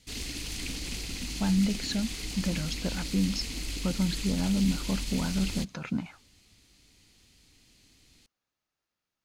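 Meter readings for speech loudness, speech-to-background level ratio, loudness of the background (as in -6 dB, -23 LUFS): -31.0 LUFS, 4.5 dB, -35.5 LUFS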